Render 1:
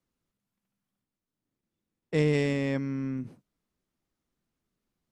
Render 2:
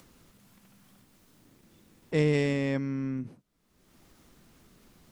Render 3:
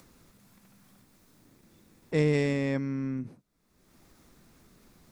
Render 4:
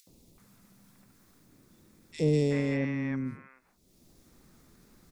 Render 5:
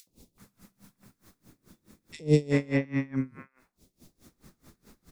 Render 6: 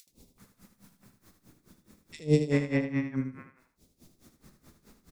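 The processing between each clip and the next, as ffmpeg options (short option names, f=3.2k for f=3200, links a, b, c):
-af "acompressor=mode=upward:threshold=-38dB:ratio=2.5"
-af "equalizer=f=3k:w=5.9:g=-6"
-filter_complex "[0:a]acrossover=split=770|2700[a][b][c];[a]adelay=70[d];[b]adelay=380[e];[d][e][c]amix=inputs=3:normalize=0"
-af "aeval=exprs='val(0)*pow(10,-26*(0.5-0.5*cos(2*PI*4.7*n/s))/20)':c=same,volume=7.5dB"
-af "aecho=1:1:77|154|231:0.376|0.0677|0.0122,volume=-1.5dB"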